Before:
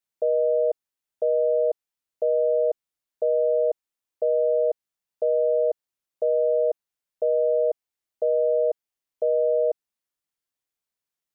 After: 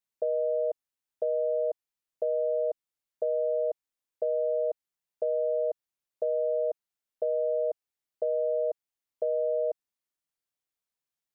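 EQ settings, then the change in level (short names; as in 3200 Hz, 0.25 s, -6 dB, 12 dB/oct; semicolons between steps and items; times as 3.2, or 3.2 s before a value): dynamic EQ 390 Hz, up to -5 dB, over -28 dBFS, Q 1.3; -3.5 dB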